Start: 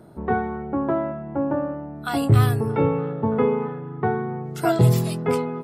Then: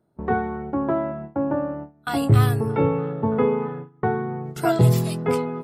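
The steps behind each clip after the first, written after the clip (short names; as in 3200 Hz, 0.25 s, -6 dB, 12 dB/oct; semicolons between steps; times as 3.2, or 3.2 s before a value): gate with hold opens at -22 dBFS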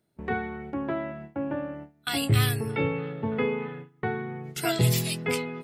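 resonant high shelf 1600 Hz +11 dB, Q 1.5; gain -6.5 dB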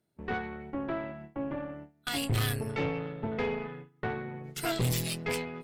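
tube stage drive 24 dB, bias 0.75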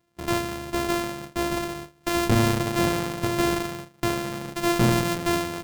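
sample sorter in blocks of 128 samples; gain +8.5 dB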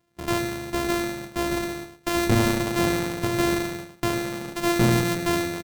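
echo 0.105 s -9.5 dB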